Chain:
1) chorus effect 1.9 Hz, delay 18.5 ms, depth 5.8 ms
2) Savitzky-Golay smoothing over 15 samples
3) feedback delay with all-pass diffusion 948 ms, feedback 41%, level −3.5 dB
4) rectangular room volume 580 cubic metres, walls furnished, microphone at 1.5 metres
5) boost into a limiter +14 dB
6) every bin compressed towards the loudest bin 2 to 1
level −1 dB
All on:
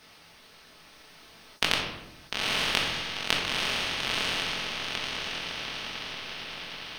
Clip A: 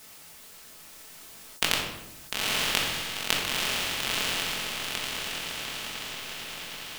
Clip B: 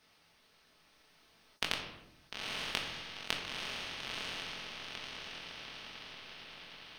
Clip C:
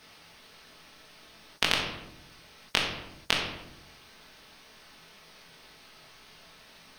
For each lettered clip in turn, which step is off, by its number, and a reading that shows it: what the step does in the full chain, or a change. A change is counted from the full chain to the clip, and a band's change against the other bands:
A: 2, 8 kHz band +7.0 dB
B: 5, change in crest factor +3.5 dB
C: 3, change in momentary loudness spread +7 LU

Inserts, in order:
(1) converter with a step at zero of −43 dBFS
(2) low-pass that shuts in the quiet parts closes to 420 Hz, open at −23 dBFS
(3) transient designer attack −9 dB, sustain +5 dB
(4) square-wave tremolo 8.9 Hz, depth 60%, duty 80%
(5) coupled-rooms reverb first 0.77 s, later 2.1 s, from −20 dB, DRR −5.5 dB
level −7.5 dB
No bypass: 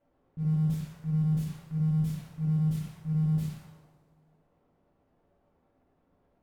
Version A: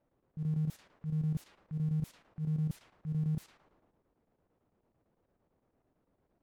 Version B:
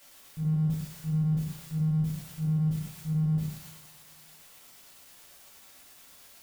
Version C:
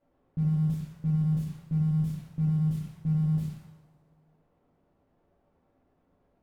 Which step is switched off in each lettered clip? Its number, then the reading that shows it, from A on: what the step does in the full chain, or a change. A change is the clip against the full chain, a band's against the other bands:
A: 5, change in integrated loudness −6.5 LU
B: 2, change in momentary loudness spread +4 LU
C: 3, change in momentary loudness spread −1 LU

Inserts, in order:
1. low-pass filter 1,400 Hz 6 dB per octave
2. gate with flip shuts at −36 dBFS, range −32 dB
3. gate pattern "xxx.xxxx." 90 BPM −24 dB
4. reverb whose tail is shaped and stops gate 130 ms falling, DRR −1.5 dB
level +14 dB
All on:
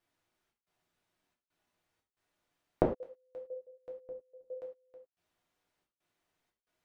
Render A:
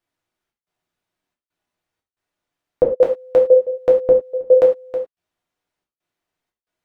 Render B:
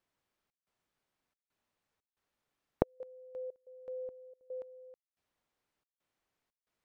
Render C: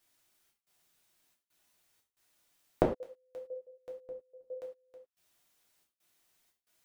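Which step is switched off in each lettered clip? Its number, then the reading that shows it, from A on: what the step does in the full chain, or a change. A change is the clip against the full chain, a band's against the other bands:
2, change in momentary loudness spread −8 LU
4, change in momentary loudness spread −3 LU
1, 2 kHz band +3.0 dB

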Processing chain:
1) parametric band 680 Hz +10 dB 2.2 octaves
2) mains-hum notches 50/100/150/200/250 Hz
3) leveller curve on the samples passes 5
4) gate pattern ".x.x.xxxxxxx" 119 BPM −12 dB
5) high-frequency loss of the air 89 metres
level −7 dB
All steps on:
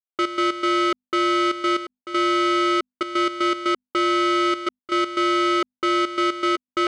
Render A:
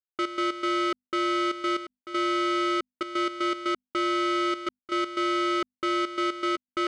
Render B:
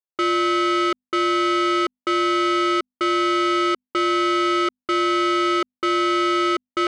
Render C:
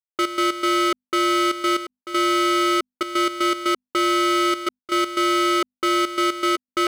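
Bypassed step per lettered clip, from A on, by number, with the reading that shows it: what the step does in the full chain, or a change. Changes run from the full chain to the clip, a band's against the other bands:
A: 1, change in integrated loudness −6.0 LU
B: 4, change in momentary loudness spread −2 LU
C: 5, 8 kHz band +7.0 dB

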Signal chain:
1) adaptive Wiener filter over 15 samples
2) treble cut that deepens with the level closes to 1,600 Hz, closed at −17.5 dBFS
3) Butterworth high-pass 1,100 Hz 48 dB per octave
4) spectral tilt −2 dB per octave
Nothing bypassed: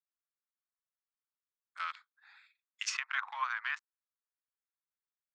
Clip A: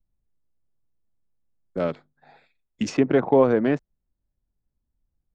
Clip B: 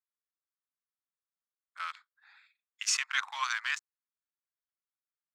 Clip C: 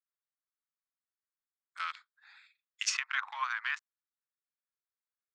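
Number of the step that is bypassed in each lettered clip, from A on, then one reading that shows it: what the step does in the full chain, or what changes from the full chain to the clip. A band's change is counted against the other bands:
3, change in crest factor −6.0 dB
2, 8 kHz band +7.0 dB
4, 8 kHz band +3.5 dB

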